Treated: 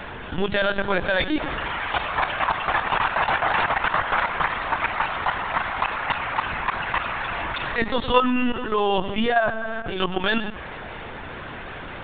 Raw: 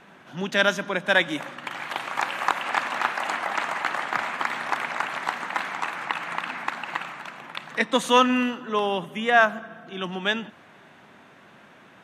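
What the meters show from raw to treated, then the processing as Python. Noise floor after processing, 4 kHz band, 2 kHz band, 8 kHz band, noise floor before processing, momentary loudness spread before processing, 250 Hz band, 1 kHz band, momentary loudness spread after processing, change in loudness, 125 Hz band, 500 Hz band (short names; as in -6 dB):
-36 dBFS, +0.5 dB, +1.0 dB, under -40 dB, -52 dBFS, 14 LU, +2.0 dB, +3.0 dB, 13 LU, +1.5 dB, +6.5 dB, +2.0 dB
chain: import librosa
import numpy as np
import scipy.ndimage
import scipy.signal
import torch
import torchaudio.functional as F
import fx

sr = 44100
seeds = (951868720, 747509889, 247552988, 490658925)

p1 = fx.hum_notches(x, sr, base_hz=50, count=4)
p2 = fx.dynamic_eq(p1, sr, hz=2100.0, q=1.6, threshold_db=-37.0, ratio=4.0, max_db=-3)
p3 = fx.level_steps(p2, sr, step_db=15)
p4 = p3 + fx.echo_single(p3, sr, ms=117, db=-20.5, dry=0)
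p5 = fx.lpc_vocoder(p4, sr, seeds[0], excitation='pitch_kept', order=16)
p6 = fx.env_flatten(p5, sr, amount_pct=50)
y = p6 * 10.0 ** (2.5 / 20.0)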